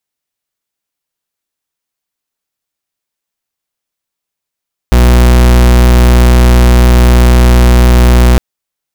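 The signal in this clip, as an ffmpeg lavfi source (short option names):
-f lavfi -i "aevalsrc='0.596*(2*lt(mod(61*t,1),0.42)-1)':d=3.46:s=44100"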